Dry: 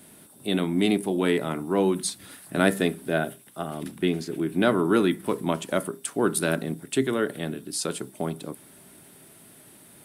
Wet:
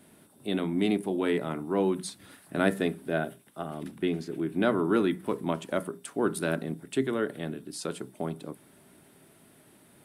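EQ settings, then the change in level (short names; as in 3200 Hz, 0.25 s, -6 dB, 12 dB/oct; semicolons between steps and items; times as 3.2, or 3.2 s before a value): high shelf 3800 Hz -8 dB; notches 60/120/180 Hz; -3.5 dB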